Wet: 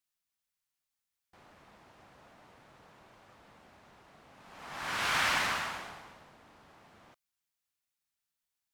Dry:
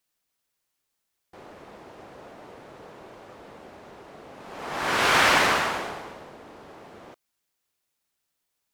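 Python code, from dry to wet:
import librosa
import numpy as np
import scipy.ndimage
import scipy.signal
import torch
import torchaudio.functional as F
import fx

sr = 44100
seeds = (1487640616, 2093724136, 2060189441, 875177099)

y = fx.peak_eq(x, sr, hz=420.0, db=-10.5, octaves=1.4)
y = y * 10.0 ** (-8.5 / 20.0)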